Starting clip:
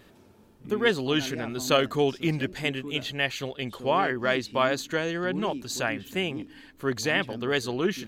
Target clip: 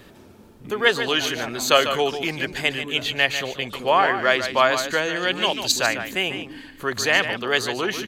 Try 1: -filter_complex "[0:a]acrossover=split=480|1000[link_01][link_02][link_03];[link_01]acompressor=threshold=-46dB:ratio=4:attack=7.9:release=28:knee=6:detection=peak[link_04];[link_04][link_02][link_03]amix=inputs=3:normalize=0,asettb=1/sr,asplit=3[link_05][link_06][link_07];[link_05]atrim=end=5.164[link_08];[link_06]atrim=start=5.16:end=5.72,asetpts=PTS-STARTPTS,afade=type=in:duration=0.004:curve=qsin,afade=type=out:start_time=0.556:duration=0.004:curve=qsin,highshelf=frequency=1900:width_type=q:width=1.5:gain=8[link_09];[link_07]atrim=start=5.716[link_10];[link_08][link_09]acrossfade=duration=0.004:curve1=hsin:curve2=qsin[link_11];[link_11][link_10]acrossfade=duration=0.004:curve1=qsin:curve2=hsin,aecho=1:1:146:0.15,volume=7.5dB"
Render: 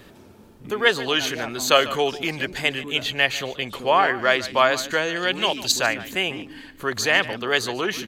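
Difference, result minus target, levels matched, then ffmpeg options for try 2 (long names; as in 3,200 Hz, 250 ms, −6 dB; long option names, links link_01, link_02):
echo-to-direct −7 dB
-filter_complex "[0:a]acrossover=split=480|1000[link_01][link_02][link_03];[link_01]acompressor=threshold=-46dB:ratio=4:attack=7.9:release=28:knee=6:detection=peak[link_04];[link_04][link_02][link_03]amix=inputs=3:normalize=0,asettb=1/sr,asplit=3[link_05][link_06][link_07];[link_05]atrim=end=5.164[link_08];[link_06]atrim=start=5.16:end=5.72,asetpts=PTS-STARTPTS,afade=type=in:duration=0.004:curve=qsin,afade=type=out:start_time=0.556:duration=0.004:curve=qsin,highshelf=frequency=1900:width_type=q:width=1.5:gain=8[link_09];[link_07]atrim=start=5.716[link_10];[link_08][link_09]acrossfade=duration=0.004:curve1=hsin:curve2=qsin[link_11];[link_11][link_10]acrossfade=duration=0.004:curve1=qsin:curve2=hsin,aecho=1:1:146:0.335,volume=7.5dB"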